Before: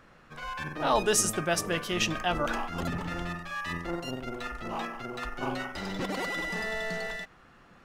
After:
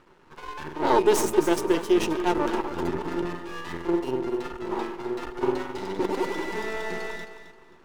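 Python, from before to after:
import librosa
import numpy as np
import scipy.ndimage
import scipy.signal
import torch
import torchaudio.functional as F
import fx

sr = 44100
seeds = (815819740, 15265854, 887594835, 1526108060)

p1 = np.maximum(x, 0.0)
p2 = fx.small_body(p1, sr, hz=(370.0, 910.0), ring_ms=40, db=15)
p3 = fx.dynamic_eq(p2, sr, hz=370.0, q=0.9, threshold_db=-39.0, ratio=4.0, max_db=6)
y = p3 + fx.echo_feedback(p3, sr, ms=265, feedback_pct=26, wet_db=-11.0, dry=0)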